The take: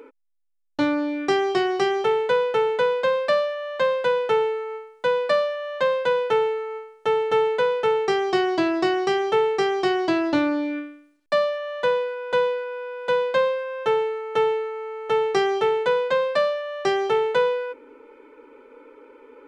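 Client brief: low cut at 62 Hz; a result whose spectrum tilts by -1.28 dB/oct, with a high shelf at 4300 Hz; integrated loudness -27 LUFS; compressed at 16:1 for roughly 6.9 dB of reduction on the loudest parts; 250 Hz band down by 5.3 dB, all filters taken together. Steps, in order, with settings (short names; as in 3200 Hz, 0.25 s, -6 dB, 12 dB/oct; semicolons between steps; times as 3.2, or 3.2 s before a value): HPF 62 Hz; bell 250 Hz -8.5 dB; high shelf 4300 Hz -5 dB; compressor 16:1, threshold -24 dBFS; gain +2.5 dB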